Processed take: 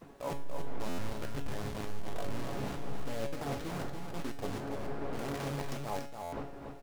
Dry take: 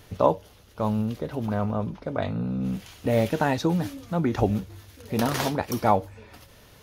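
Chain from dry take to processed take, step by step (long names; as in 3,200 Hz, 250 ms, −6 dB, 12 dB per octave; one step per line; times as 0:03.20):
hold until the input has moved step −20.5 dBFS
wind on the microphone 530 Hz −33 dBFS
noise gate with hold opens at −32 dBFS
parametric band 91 Hz −2.5 dB 2.8 octaves
reversed playback
downward compressor 6 to 1, threshold −32 dBFS, peak gain reduction 16.5 dB
reversed playback
tuned comb filter 140 Hz, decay 0.45 s, harmonics all, mix 80%
background noise pink −73 dBFS
on a send: single-tap delay 286 ms −5.5 dB
on the sum: buffer that repeats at 0:00.88/0:06.22, samples 512, times 8
highs frequency-modulated by the lows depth 0.46 ms
level +6 dB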